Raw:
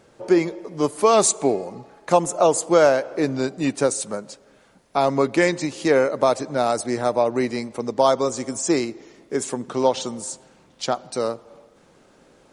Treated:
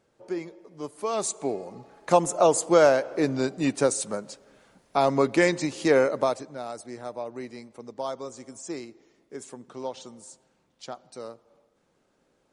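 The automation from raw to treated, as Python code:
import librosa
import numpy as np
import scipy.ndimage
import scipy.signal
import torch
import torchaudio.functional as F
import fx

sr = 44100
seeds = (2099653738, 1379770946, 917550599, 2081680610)

y = fx.gain(x, sr, db=fx.line((0.92, -14.5), (2.11, -2.5), (6.13, -2.5), (6.58, -15.0)))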